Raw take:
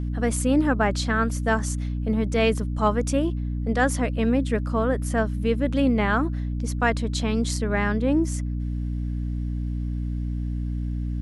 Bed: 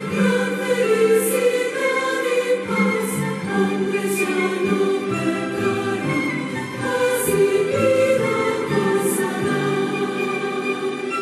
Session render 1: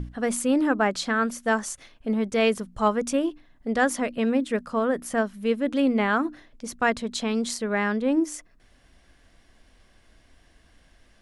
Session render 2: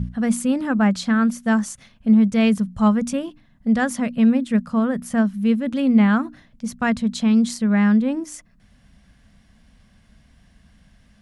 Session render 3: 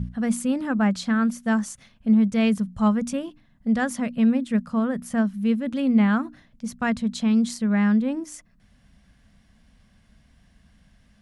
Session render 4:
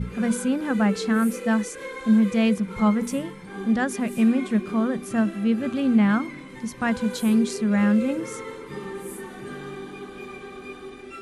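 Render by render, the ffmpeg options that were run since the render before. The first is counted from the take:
-af "bandreject=f=60:t=h:w=6,bandreject=f=120:t=h:w=6,bandreject=f=180:t=h:w=6,bandreject=f=240:t=h:w=6,bandreject=f=300:t=h:w=6"
-af "highpass=f=48:p=1,lowshelf=f=260:t=q:w=3:g=8"
-af "volume=-3.5dB"
-filter_complex "[1:a]volume=-15.5dB[a];[0:a][a]amix=inputs=2:normalize=0"

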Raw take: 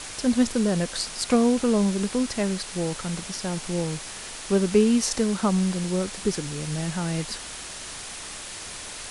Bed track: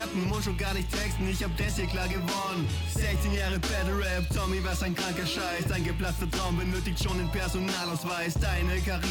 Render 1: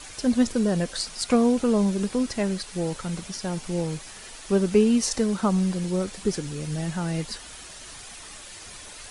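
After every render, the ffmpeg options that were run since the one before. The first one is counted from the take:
-af "afftdn=nr=8:nf=-38"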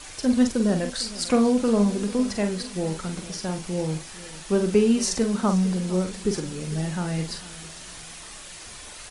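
-filter_complex "[0:a]asplit=2[a][b];[b]adelay=44,volume=-7dB[c];[a][c]amix=inputs=2:normalize=0,aecho=1:1:452|904|1356:0.126|0.0491|0.0191"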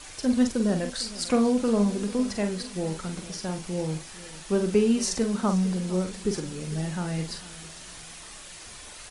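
-af "volume=-2.5dB"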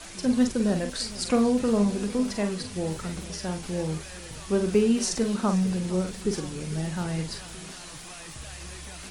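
-filter_complex "[1:a]volume=-15.5dB[a];[0:a][a]amix=inputs=2:normalize=0"

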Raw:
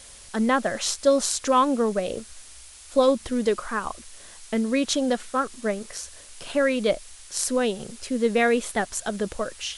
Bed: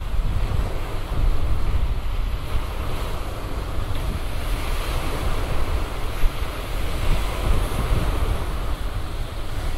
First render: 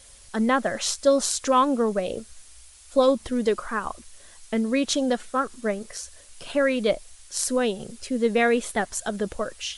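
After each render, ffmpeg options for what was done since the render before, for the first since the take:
-af "afftdn=nr=6:nf=-46"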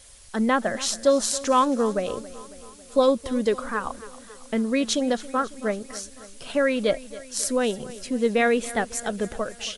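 -af "aecho=1:1:275|550|825|1100|1375:0.133|0.0787|0.0464|0.0274|0.0162"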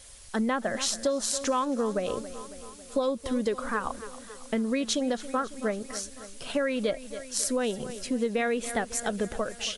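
-af "acompressor=threshold=-24dB:ratio=6"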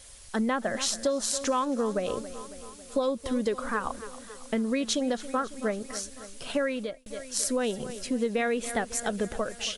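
-filter_complex "[0:a]asplit=2[a][b];[a]atrim=end=7.06,asetpts=PTS-STARTPTS,afade=t=out:st=6.64:d=0.42[c];[b]atrim=start=7.06,asetpts=PTS-STARTPTS,afade=t=in:d=0.004:c=hsin[d];[c][d]concat=n=2:v=0:a=1"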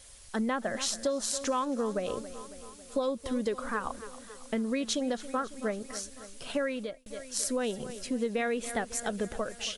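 -af "volume=-3dB"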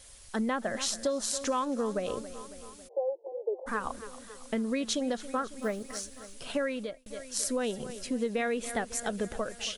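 -filter_complex "[0:a]asplit=3[a][b][c];[a]afade=t=out:st=2.87:d=0.02[d];[b]asuperpass=centerf=560:order=20:qfactor=1,afade=t=in:st=2.87:d=0.02,afade=t=out:st=3.66:d=0.02[e];[c]afade=t=in:st=3.66:d=0.02[f];[d][e][f]amix=inputs=3:normalize=0,asettb=1/sr,asplit=3[g][h][i];[g]atrim=end=5.594[j];[h]atrim=start=5.59:end=6.35,asetpts=PTS-STARTPTS,afade=t=in:d=0.004:c=qsin,afade=t=out:st=0.756:d=0.004:c=qsin,acrusher=bits=7:mode=log:mix=0:aa=0.000001[k];[i]atrim=start=6.346[l];[j][k]acrossfade=d=0.004:c1=hsin:c2=qsin[m];[m][l]acrossfade=d=0.004:c1=qsin:c2=hsin"

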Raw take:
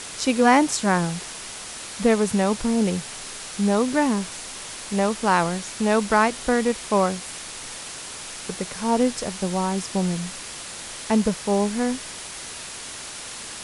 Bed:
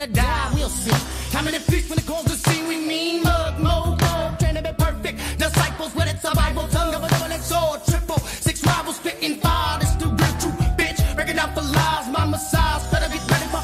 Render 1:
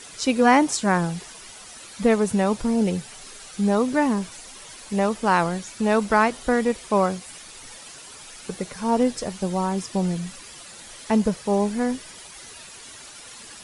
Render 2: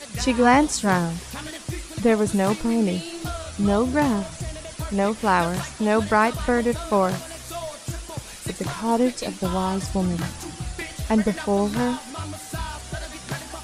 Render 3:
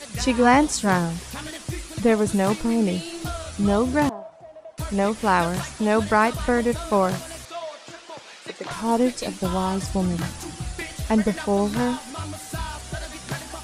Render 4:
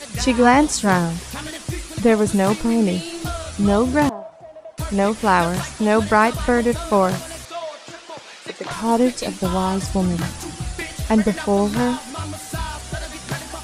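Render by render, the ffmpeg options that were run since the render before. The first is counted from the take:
-af "afftdn=nr=10:nf=-36"
-filter_complex "[1:a]volume=-12.5dB[a];[0:a][a]amix=inputs=2:normalize=0"
-filter_complex "[0:a]asettb=1/sr,asplit=3[a][b][c];[a]atrim=end=4.094[d];[b]atrim=start=4.09:end=4.78,asetpts=PTS-STARTPTS,afade=t=in:d=0.004:c=qsin,afade=t=out:st=0.686:d=0.004:c=qsin,bandpass=f=710:t=q:w=3.3[e];[c]atrim=start=4.776[f];[d][e]acrossfade=d=0.004:c1=hsin:c2=qsin[g];[g][f]acrossfade=d=0.004:c1=qsin:c2=hsin,asettb=1/sr,asplit=3[h][i][j];[h]atrim=end=7.454[k];[i]atrim=start=7.45:end=8.71,asetpts=PTS-STARTPTS,afade=t=in:d=0.004:c=qsin,afade=t=out:st=1.256:d=0.004:c=qsin,highpass=410,lowpass=4.5k[l];[j]atrim=start=8.706[m];[k][l]acrossfade=d=0.004:c1=hsin:c2=qsin[n];[n][m]acrossfade=d=0.004:c1=qsin:c2=hsin"
-af "volume=3.5dB,alimiter=limit=-3dB:level=0:latency=1"

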